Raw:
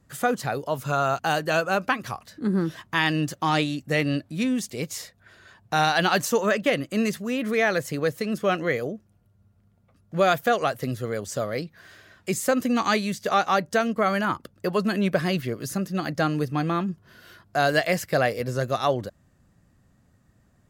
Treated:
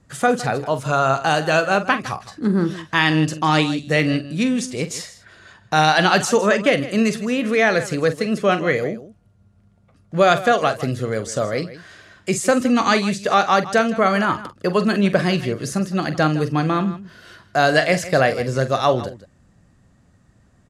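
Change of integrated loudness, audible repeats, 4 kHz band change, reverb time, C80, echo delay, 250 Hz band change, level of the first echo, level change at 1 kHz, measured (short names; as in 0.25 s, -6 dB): +6.0 dB, 2, +6.0 dB, none, none, 45 ms, +6.0 dB, -12.0 dB, +6.0 dB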